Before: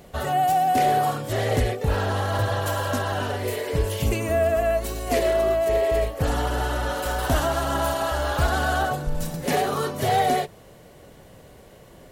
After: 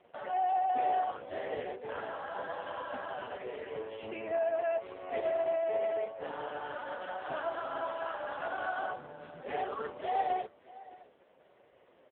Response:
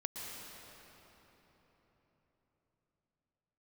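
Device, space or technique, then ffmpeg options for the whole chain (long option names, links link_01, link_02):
satellite phone: -af "highpass=370,lowpass=3100,aecho=1:1:612:0.1,volume=-8dB" -ar 8000 -c:a libopencore_amrnb -b:a 4750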